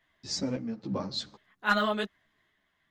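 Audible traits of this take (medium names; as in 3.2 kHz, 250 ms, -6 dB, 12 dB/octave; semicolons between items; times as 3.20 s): random-step tremolo 3.6 Hz; a shimmering, thickened sound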